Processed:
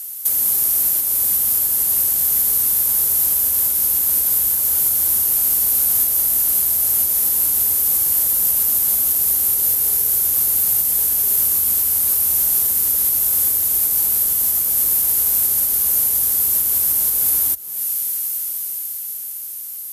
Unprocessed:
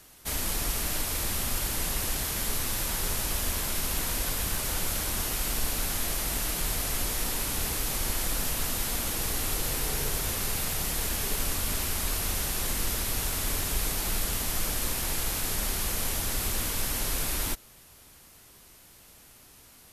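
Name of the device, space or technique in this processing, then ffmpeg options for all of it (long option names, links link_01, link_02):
FM broadcast chain: -filter_complex "[0:a]highpass=frequency=55:width=0.5412,highpass=frequency=55:width=1.3066,dynaudnorm=framelen=350:gausssize=11:maxgain=11dB,acrossover=split=83|1300[link_01][link_02][link_03];[link_01]acompressor=threshold=-33dB:ratio=4[link_04];[link_02]acompressor=threshold=-36dB:ratio=4[link_05];[link_03]acompressor=threshold=-39dB:ratio=4[link_06];[link_04][link_05][link_06]amix=inputs=3:normalize=0,aemphasis=mode=production:type=50fm,alimiter=limit=-18.5dB:level=0:latency=1:release=338,asoftclip=type=hard:threshold=-21dB,lowpass=frequency=15000:width=0.5412,lowpass=frequency=15000:width=1.3066,aemphasis=mode=production:type=50fm,lowshelf=frequency=130:gain=-8"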